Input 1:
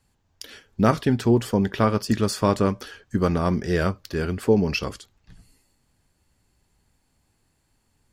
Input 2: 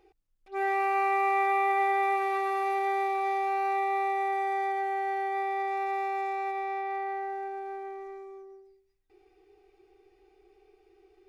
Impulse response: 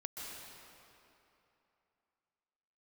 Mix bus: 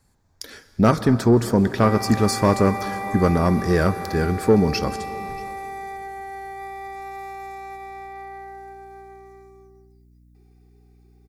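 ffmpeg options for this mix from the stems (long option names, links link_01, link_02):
-filter_complex "[0:a]volume=3dB,asplit=3[link_01][link_02][link_03];[link_02]volume=-11dB[link_04];[link_03]volume=-22dB[link_05];[1:a]crystalizer=i=4:c=0,aeval=exprs='val(0)+0.00447*(sin(2*PI*60*n/s)+sin(2*PI*2*60*n/s)/2+sin(2*PI*3*60*n/s)/3+sin(2*PI*4*60*n/s)/4+sin(2*PI*5*60*n/s)/5)':channel_layout=same,adelay=1250,volume=-5dB[link_06];[2:a]atrim=start_sample=2205[link_07];[link_04][link_07]afir=irnorm=-1:irlink=0[link_08];[link_05]aecho=0:1:633:1[link_09];[link_01][link_06][link_08][link_09]amix=inputs=4:normalize=0,equalizer=frequency=2900:width_type=o:width=0.4:gain=-12.5,asoftclip=type=tanh:threshold=-6dB"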